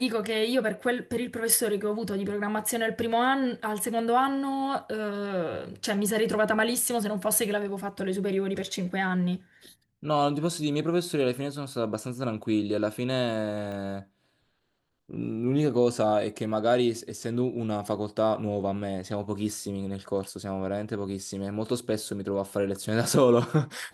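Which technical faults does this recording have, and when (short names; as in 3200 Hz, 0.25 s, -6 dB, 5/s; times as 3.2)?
13.72 pop -27 dBFS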